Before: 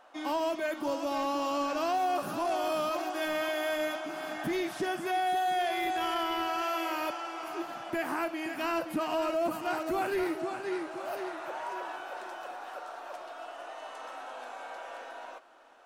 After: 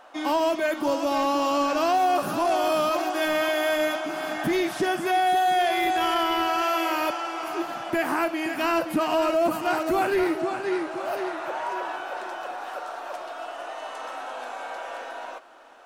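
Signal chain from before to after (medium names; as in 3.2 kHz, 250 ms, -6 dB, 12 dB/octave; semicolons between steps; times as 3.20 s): 10.05–12.58 s: treble shelf 7 kHz -4.5 dB; trim +7.5 dB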